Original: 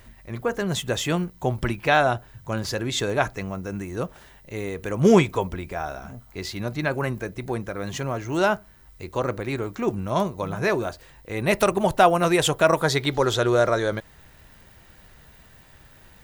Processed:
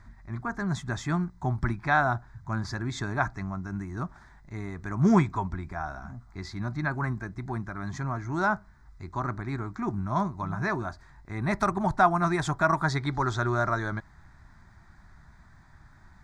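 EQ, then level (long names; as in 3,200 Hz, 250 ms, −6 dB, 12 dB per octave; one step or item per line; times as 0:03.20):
high-frequency loss of the air 110 metres
high-shelf EQ 11,000 Hz −5 dB
phaser with its sweep stopped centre 1,200 Hz, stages 4
0.0 dB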